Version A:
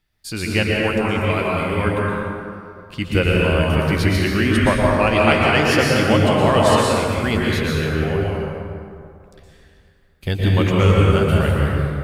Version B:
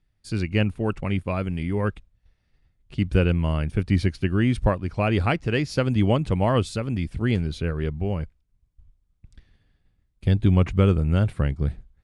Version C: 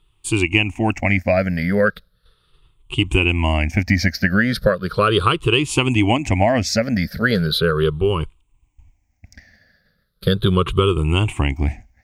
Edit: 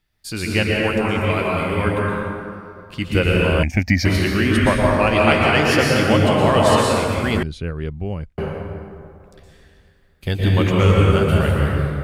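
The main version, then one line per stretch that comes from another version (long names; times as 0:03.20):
A
0:03.63–0:04.05: punch in from C
0:07.43–0:08.38: punch in from B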